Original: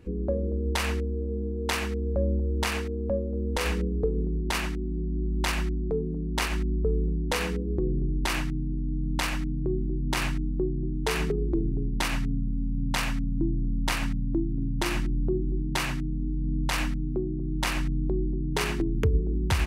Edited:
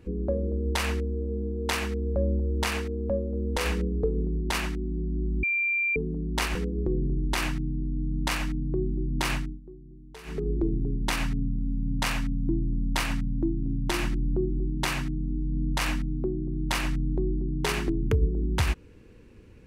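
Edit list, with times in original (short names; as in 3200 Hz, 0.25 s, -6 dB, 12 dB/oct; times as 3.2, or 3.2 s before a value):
5.43–5.96 bleep 2370 Hz -23 dBFS
6.55–7.47 cut
10.27–11.41 dip -18.5 dB, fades 0.25 s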